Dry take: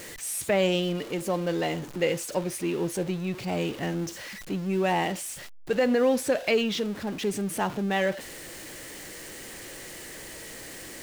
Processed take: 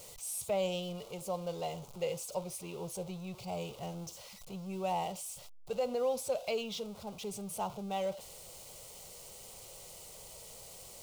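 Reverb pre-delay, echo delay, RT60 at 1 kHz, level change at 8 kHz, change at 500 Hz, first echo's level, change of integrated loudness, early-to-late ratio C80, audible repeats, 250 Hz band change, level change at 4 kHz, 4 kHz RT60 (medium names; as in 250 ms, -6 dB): no reverb, no echo, no reverb, -7.0 dB, -9.0 dB, no echo, -11.5 dB, no reverb, no echo, -14.5 dB, -10.0 dB, no reverb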